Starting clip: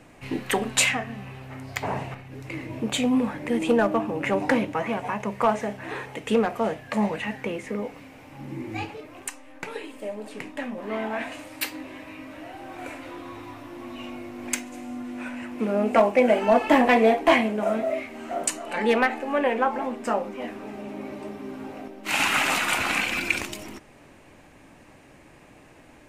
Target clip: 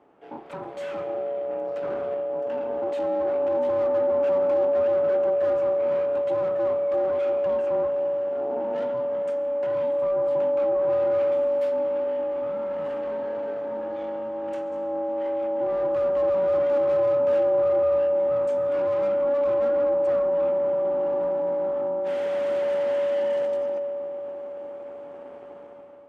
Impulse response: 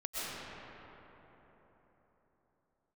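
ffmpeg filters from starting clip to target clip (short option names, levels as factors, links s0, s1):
-filter_complex "[0:a]dynaudnorm=f=190:g=7:m=3.76,aeval=exprs='(tanh(22.4*val(0)+0.5)-tanh(0.5))/22.4':c=same,asplit=2[s0][s1];[1:a]atrim=start_sample=2205[s2];[s1][s2]afir=irnorm=-1:irlink=0,volume=0.2[s3];[s0][s3]amix=inputs=2:normalize=0,aeval=exprs='val(0)*sin(2*PI*570*n/s)':c=same,bandpass=f=470:t=q:w=0.95:csg=0"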